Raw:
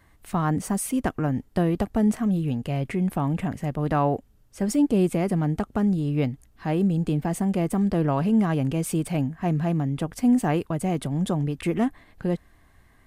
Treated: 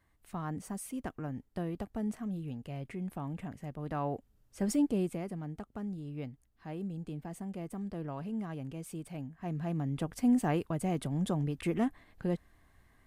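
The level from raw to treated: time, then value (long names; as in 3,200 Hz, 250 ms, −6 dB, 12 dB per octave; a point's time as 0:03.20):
0:03.84 −14 dB
0:04.71 −6 dB
0:05.36 −16.5 dB
0:09.22 −16.5 dB
0:09.97 −7 dB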